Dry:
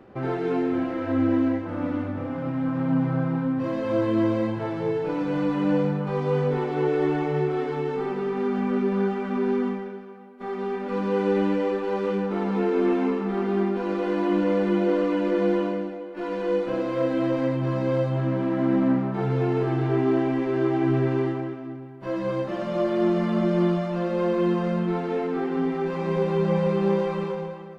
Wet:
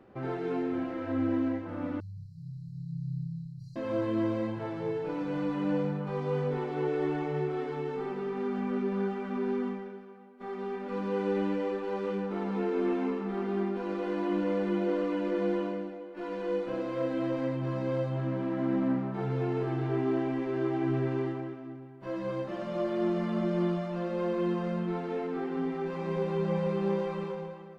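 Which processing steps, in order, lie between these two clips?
2–3.76 brick-wall FIR band-stop 180–3900 Hz; gain -7 dB

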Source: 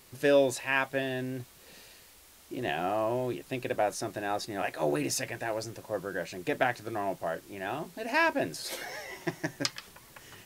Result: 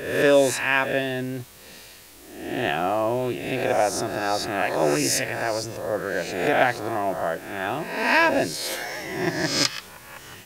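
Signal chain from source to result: spectral swells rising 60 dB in 0.83 s; gain +5.5 dB

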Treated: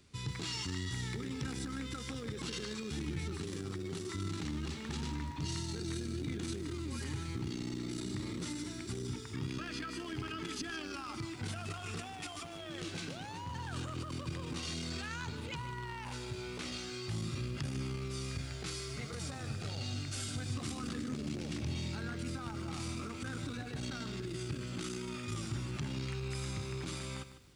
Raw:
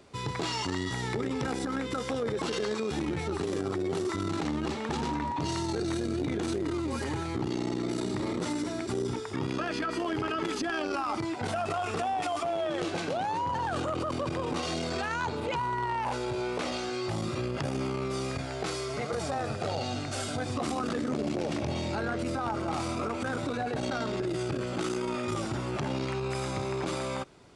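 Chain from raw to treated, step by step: passive tone stack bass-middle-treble 6-0-2; lo-fi delay 0.151 s, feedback 35%, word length 12-bit, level -12 dB; gain +11.5 dB

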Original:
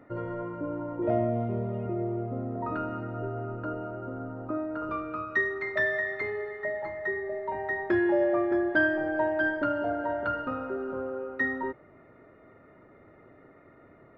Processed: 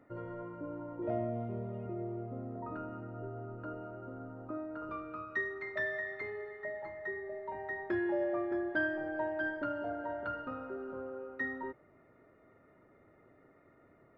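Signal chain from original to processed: 2.6–3.6 high shelf 2200 Hz -9.5 dB; gain -8.5 dB

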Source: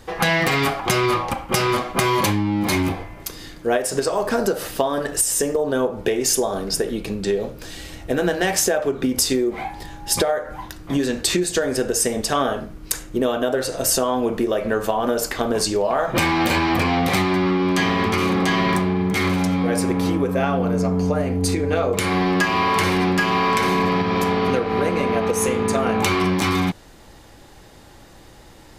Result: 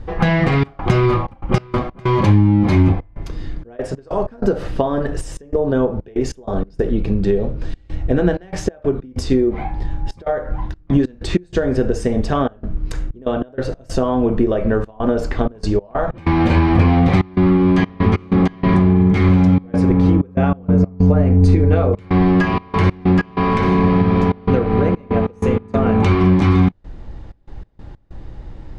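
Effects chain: RIAA curve playback; step gate "xxxx.xxx.x.x.xx" 95 bpm -24 dB; air absorption 62 m

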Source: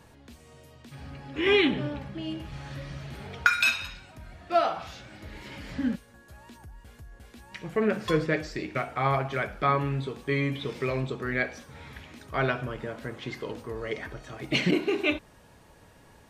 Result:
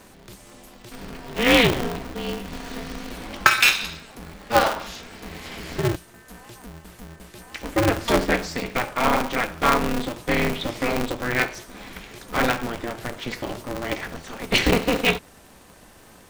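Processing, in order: high shelf 5200 Hz +9 dB; polarity switched at an audio rate 120 Hz; gain +5 dB

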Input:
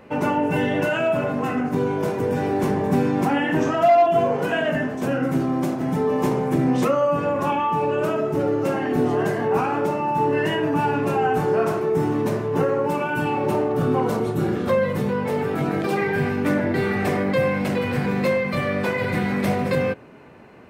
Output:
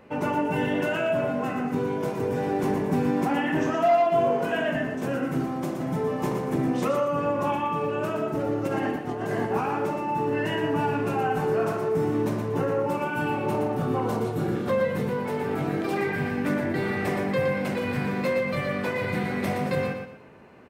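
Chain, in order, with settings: 8.67–9.51 negative-ratio compressor -23 dBFS, ratio -0.5; feedback echo 0.118 s, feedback 31%, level -6.5 dB; gain -5 dB

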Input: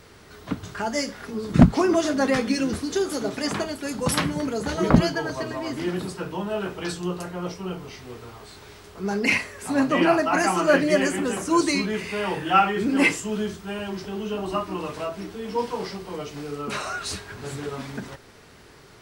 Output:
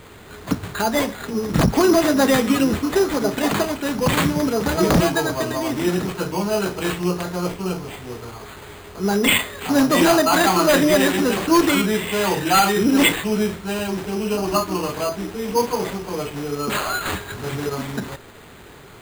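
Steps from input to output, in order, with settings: in parallel at +1 dB: limiter -14.5 dBFS, peak gain reduction 8.5 dB; on the sum: careless resampling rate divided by 8×, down none, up hold; wavefolder -8.5 dBFS

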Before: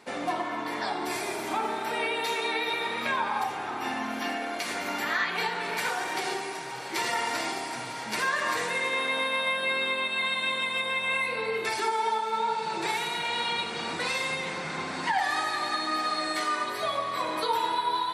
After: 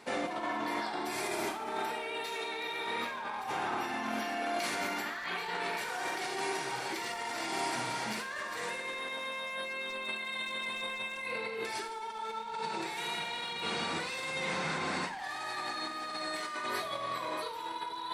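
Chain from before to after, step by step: overloaded stage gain 22.5 dB; negative-ratio compressor -34 dBFS, ratio -1; Schroeder reverb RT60 0.46 s, combs from 33 ms, DRR 7.5 dB; gain -3.5 dB

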